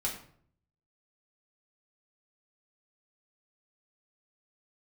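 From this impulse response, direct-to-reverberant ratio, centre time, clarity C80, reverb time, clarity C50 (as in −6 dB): −3.5 dB, 25 ms, 10.5 dB, 0.60 s, 7.0 dB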